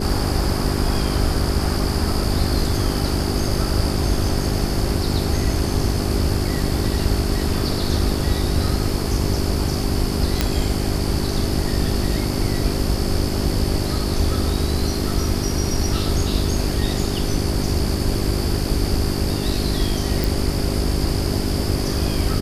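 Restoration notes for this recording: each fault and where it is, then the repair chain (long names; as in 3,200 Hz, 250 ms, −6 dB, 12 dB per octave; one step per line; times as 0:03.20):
mains hum 50 Hz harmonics 8 −25 dBFS
0:10.41: click −3 dBFS
0:20.24: click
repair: click removal
hum removal 50 Hz, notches 8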